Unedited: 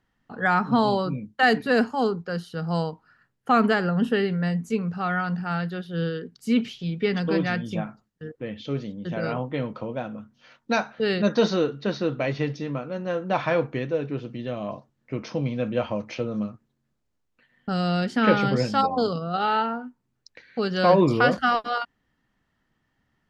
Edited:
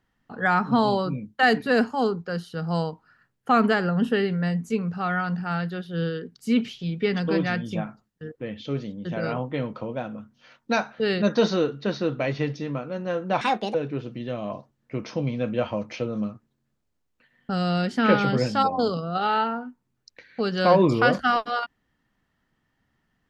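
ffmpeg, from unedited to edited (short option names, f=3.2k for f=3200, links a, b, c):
-filter_complex "[0:a]asplit=3[a][b][c];[a]atrim=end=13.414[d];[b]atrim=start=13.41:end=13.93,asetpts=PTS-STARTPTS,asetrate=68796,aresample=44100[e];[c]atrim=start=13.926[f];[d][e]acrossfade=d=0.004:c1=hsin:c2=hsin[g];[g][f]acrossfade=d=0.004:c1=hsin:c2=hsin"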